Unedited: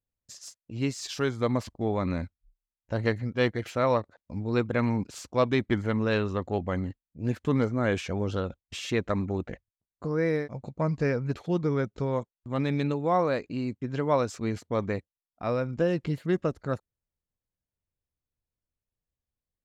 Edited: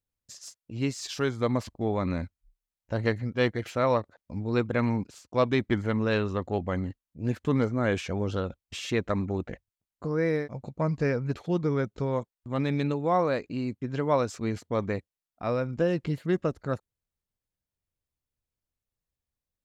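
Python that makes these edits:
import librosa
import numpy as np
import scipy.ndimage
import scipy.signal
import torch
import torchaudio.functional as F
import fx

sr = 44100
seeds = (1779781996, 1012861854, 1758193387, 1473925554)

y = fx.edit(x, sr, fx.fade_out_span(start_s=4.95, length_s=0.37), tone=tone)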